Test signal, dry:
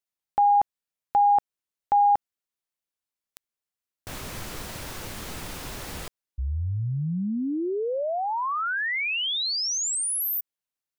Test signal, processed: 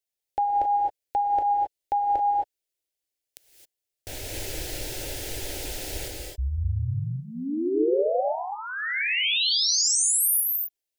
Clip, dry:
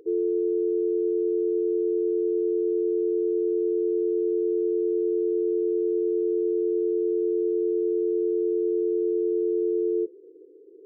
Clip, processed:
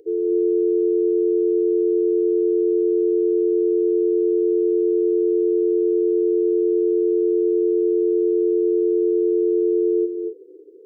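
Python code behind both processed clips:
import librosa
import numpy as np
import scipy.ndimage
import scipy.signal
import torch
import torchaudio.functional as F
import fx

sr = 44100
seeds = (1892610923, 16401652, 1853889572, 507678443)

y = fx.fixed_phaser(x, sr, hz=470.0, stages=4)
y = fx.rev_gated(y, sr, seeds[0], gate_ms=290, shape='rising', drr_db=1.0)
y = F.gain(torch.from_numpy(y), 2.5).numpy()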